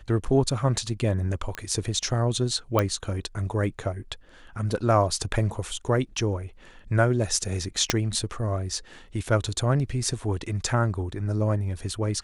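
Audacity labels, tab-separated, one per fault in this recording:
1.550000	1.550000	click −17 dBFS
2.790000	2.790000	click −9 dBFS
7.900000	7.900000	click −4 dBFS

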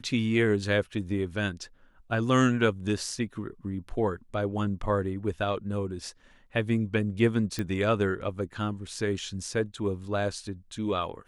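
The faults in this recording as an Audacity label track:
7.590000	7.590000	click −17 dBFS

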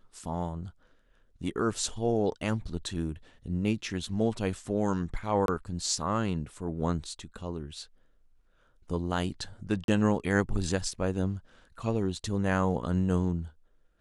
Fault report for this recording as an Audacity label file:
5.460000	5.480000	drop-out 22 ms
9.840000	9.880000	drop-out 42 ms

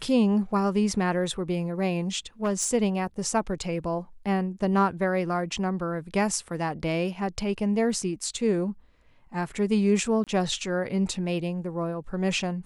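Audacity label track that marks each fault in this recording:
2.440000	2.710000	clipping −20.5 dBFS
10.240000	10.270000	drop-out 27 ms

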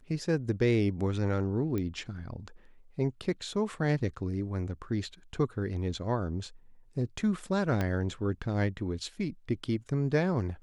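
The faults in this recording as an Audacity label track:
1.780000	1.780000	click −21 dBFS
7.810000	7.810000	click −17 dBFS

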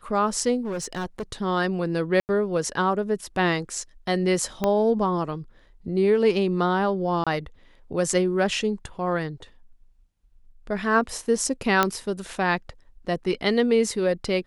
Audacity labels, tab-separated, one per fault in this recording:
0.650000	1.230000	clipping −26 dBFS
2.200000	2.290000	drop-out 89 ms
4.640000	4.640000	click −10 dBFS
7.240000	7.270000	drop-out 26 ms
11.830000	11.830000	click −5 dBFS

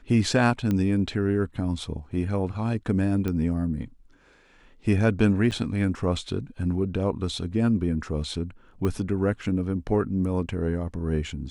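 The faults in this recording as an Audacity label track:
0.710000	0.710000	click −15 dBFS
3.280000	3.280000	click −16 dBFS
5.510000	5.520000	drop-out 8 ms
8.850000	8.850000	click −16 dBFS

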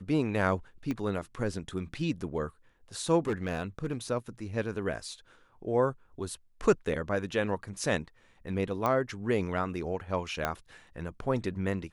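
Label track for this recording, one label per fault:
0.910000	0.910000	click −21 dBFS
3.270000	3.940000	clipping −25.5 dBFS
8.860000	8.860000	click −16 dBFS
10.450000	10.450000	click −14 dBFS

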